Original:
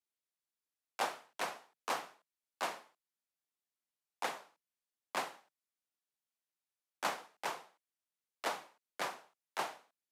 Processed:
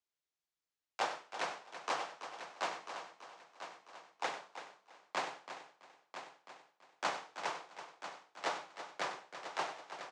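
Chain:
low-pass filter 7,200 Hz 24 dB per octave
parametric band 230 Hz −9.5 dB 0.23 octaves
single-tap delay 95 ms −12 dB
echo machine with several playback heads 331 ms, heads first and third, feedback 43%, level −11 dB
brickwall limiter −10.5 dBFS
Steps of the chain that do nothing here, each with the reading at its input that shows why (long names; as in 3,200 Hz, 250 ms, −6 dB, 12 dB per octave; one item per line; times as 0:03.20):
brickwall limiter −10.5 dBFS: peak of its input −20.5 dBFS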